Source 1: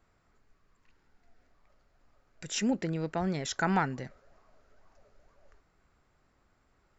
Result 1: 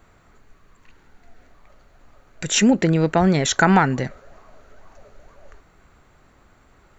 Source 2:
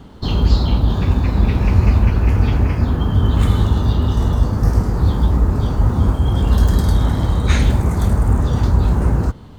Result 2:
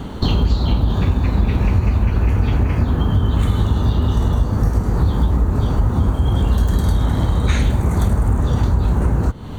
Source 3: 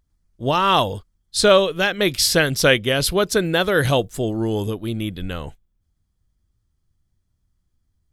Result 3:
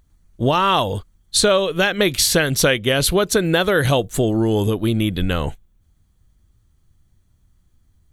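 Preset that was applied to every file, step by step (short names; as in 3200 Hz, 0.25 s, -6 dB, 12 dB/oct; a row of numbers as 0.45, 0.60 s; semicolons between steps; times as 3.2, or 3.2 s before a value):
notch 5100 Hz, Q 6.4; compressor 4:1, threshold -26 dBFS; match loudness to -18 LUFS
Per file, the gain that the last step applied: +15.0, +11.0, +10.5 dB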